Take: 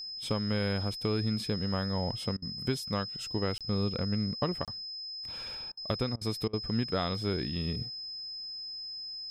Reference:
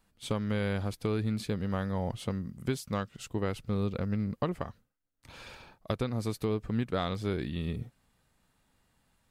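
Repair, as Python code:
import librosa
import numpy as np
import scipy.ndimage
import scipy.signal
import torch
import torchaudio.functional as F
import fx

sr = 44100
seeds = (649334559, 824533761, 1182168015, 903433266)

y = fx.notch(x, sr, hz=5100.0, q=30.0)
y = fx.fix_interpolate(y, sr, at_s=(3.58, 4.65), length_ms=27.0)
y = fx.fix_interpolate(y, sr, at_s=(2.37, 5.72, 6.16, 6.48), length_ms=51.0)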